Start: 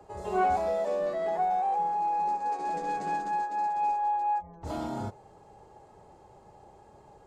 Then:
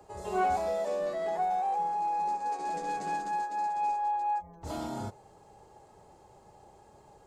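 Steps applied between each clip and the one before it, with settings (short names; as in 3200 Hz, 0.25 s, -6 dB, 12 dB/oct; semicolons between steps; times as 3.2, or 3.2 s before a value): high shelf 3800 Hz +8 dB; gain -2.5 dB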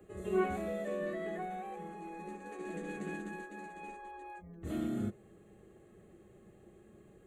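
fixed phaser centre 2200 Hz, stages 4; small resonant body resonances 210/340/1100/1800 Hz, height 11 dB, ringing for 55 ms; gain -2 dB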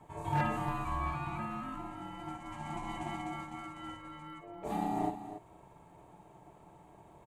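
loudspeakers at several distances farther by 18 m -9 dB, 97 m -11 dB; wavefolder -25 dBFS; ring modulator 520 Hz; gain +4 dB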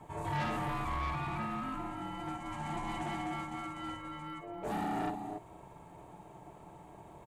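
soft clip -35 dBFS, distortion -8 dB; gain +4.5 dB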